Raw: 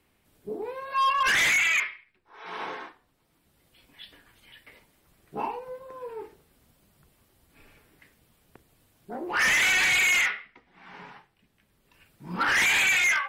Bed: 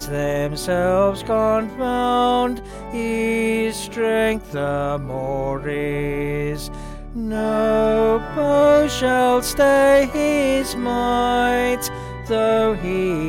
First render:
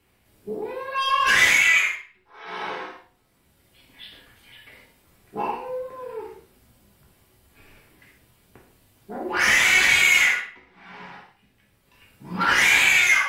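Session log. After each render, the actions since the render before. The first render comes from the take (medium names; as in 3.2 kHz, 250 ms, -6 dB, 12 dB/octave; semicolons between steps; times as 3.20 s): flutter echo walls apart 10.1 m, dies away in 0.29 s; gated-style reverb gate 180 ms falling, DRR -2.5 dB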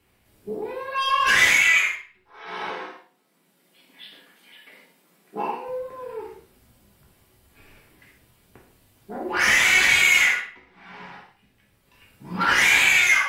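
2.71–5.68 s: elliptic high-pass 160 Hz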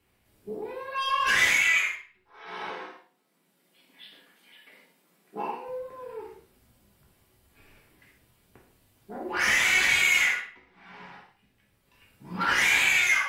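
trim -5 dB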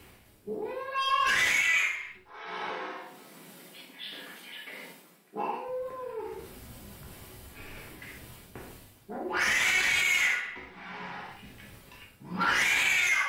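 reverse; upward compressor, threshold -32 dBFS; reverse; peak limiter -17 dBFS, peak gain reduction 6 dB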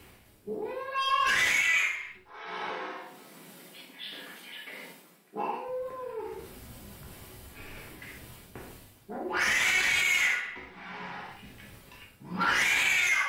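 no audible change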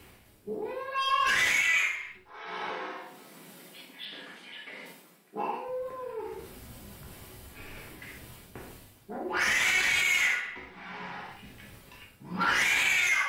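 4.05–4.86 s: distance through air 60 m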